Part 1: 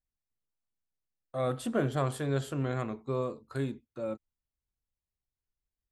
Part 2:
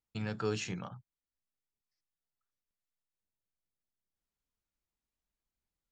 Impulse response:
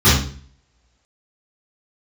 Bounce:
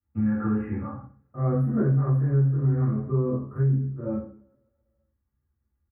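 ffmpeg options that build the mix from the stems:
-filter_complex "[0:a]volume=-10dB,asplit=3[link_01][link_02][link_03];[link_02]volume=-11.5dB[link_04];[link_03]volume=-10dB[link_05];[1:a]highshelf=frequency=2600:gain=9.5,aecho=1:1:3.6:0.61,volume=-5dB,asplit=2[link_06][link_07];[link_07]volume=-15.5dB[link_08];[2:a]atrim=start_sample=2205[link_09];[link_04][link_08]amix=inputs=2:normalize=0[link_10];[link_10][link_09]afir=irnorm=-1:irlink=0[link_11];[link_05]aecho=0:1:138|276|414|552|690|828|966:1|0.5|0.25|0.125|0.0625|0.0312|0.0156[link_12];[link_01][link_06][link_11][link_12]amix=inputs=4:normalize=0,asuperstop=centerf=4900:order=12:qfactor=0.57,highshelf=frequency=2500:gain=-9,acompressor=threshold=-20dB:ratio=5"

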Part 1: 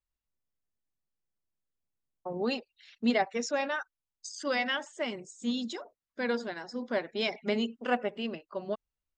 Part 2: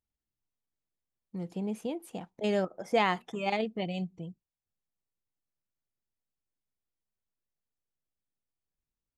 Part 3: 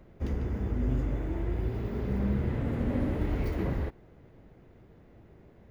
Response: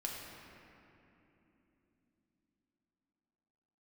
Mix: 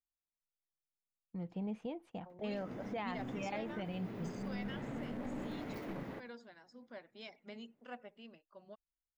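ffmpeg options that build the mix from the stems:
-filter_complex "[0:a]volume=-19dB[link_01];[1:a]lowpass=2800,asubboost=boost=3:cutoff=130,volume=-4dB[link_02];[2:a]highpass=frequency=160:width=0.5412,highpass=frequency=160:width=1.3066,aeval=exprs='clip(val(0),-1,0.0168)':channel_layout=same,adelay=2300,volume=-5.5dB[link_03];[link_02][link_03]amix=inputs=2:normalize=0,agate=range=-15dB:threshold=-55dB:ratio=16:detection=peak,alimiter=level_in=7.5dB:limit=-24dB:level=0:latency=1:release=67,volume=-7.5dB,volume=0dB[link_04];[link_01][link_04]amix=inputs=2:normalize=0,equalizer=frequency=390:width_type=o:width=0.42:gain=-5"

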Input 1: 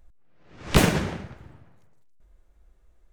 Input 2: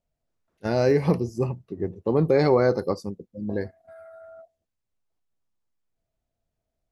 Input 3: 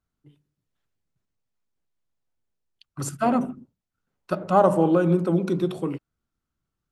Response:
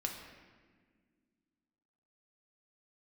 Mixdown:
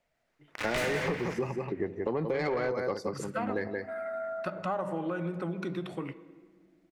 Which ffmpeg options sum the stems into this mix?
-filter_complex "[0:a]highshelf=frequency=3300:gain=8.5,aeval=exprs='val(0)*gte(abs(val(0)),0.0126)':channel_layout=same,volume=0.5dB,asplit=3[link_01][link_02][link_03];[link_02]volume=-11.5dB[link_04];[link_03]volume=-20.5dB[link_05];[1:a]acrossover=split=240[link_06][link_07];[link_07]acompressor=threshold=-24dB:ratio=2[link_08];[link_06][link_08]amix=inputs=2:normalize=0,volume=-0.5dB,asplit=4[link_09][link_10][link_11][link_12];[link_10]volume=-22.5dB[link_13];[link_11]volume=-7dB[link_14];[2:a]adelay=150,volume=-11.5dB,asplit=2[link_15][link_16];[link_16]volume=-13.5dB[link_17];[link_12]apad=whole_len=137960[link_18];[link_01][link_18]sidechaincompress=threshold=-30dB:ratio=8:attack=16:release=135[link_19];[link_19][link_15]amix=inputs=2:normalize=0,asubboost=boost=3.5:cutoff=210,acompressor=threshold=-42dB:ratio=1.5,volume=0dB[link_20];[3:a]atrim=start_sample=2205[link_21];[link_04][link_13][link_17]amix=inputs=3:normalize=0[link_22];[link_22][link_21]afir=irnorm=-1:irlink=0[link_23];[link_05][link_14]amix=inputs=2:normalize=0,aecho=0:1:177:1[link_24];[link_09][link_20][link_23][link_24]amix=inputs=4:normalize=0,equalizer=frequency=2000:width_type=o:width=0.55:gain=8.5,asplit=2[link_25][link_26];[link_26]highpass=frequency=720:poles=1,volume=17dB,asoftclip=type=tanh:threshold=-6.5dB[link_27];[link_25][link_27]amix=inputs=2:normalize=0,lowpass=frequency=2800:poles=1,volume=-6dB,acompressor=threshold=-30dB:ratio=4"

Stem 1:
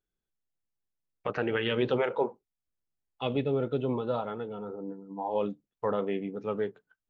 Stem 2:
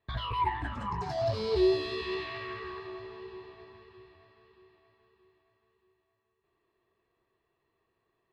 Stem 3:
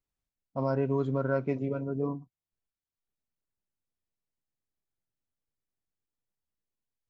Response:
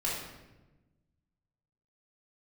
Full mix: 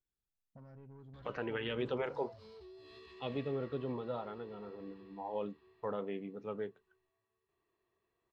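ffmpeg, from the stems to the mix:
-filter_complex "[0:a]volume=-9dB[link_01];[1:a]acompressor=threshold=-40dB:ratio=3,adelay=1050,volume=-6dB[link_02];[2:a]lowpass=frequency=1300:poles=1,equalizer=frequency=580:width=0.42:gain=-9.5,volume=-6dB[link_03];[link_02][link_03]amix=inputs=2:normalize=0,asoftclip=type=tanh:threshold=-38.5dB,acompressor=threshold=-54dB:ratio=4,volume=0dB[link_04];[link_01][link_04]amix=inputs=2:normalize=0"

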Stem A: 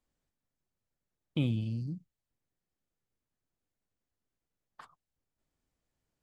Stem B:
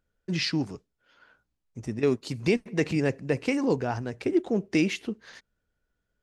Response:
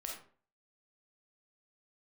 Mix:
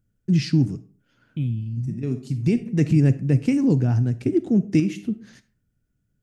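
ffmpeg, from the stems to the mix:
-filter_complex "[0:a]equalizer=frequency=2000:width_type=o:width=1.6:gain=8,volume=-5dB,asplit=2[link_01][link_02];[1:a]volume=2dB,asplit=2[link_03][link_04];[link_04]volume=-9.5dB[link_05];[link_02]apad=whole_len=274668[link_06];[link_03][link_06]sidechaincompress=threshold=-50dB:ratio=8:attack=6.1:release=834[link_07];[2:a]atrim=start_sample=2205[link_08];[link_05][link_08]afir=irnorm=-1:irlink=0[link_09];[link_01][link_07][link_09]amix=inputs=3:normalize=0,equalizer=frequency=125:width_type=o:width=1:gain=12,equalizer=frequency=250:width_type=o:width=1:gain=5,equalizer=frequency=500:width_type=o:width=1:gain=-7,equalizer=frequency=1000:width_type=o:width=1:gain=-11,equalizer=frequency=2000:width_type=o:width=1:gain=-5,equalizer=frequency=4000:width_type=o:width=1:gain=-8"

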